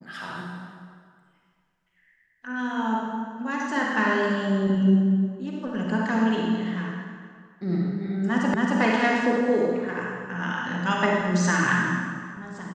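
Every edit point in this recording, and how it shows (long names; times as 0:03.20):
0:08.54: the same again, the last 0.27 s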